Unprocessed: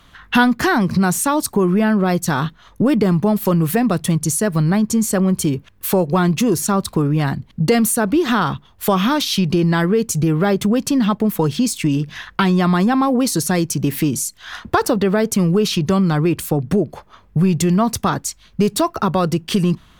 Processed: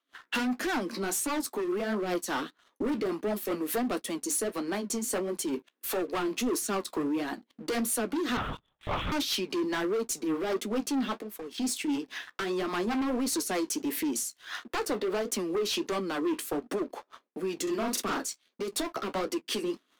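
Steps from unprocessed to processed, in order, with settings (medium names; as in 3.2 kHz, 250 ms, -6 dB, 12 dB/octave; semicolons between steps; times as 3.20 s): steep high-pass 250 Hz 48 dB/octave; overload inside the chain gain 18 dB; 11.14–11.58 s: compression 6:1, threshold -33 dBFS, peak gain reduction 12.5 dB; rotary cabinet horn 5 Hz; gate -56 dBFS, range -11 dB; flange 1.5 Hz, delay 8.1 ms, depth 7.4 ms, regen -49%; 8.37–9.12 s: LPC vocoder at 8 kHz whisper; 17.63–18.27 s: doubling 41 ms -2.5 dB; waveshaping leveller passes 2; trim -8 dB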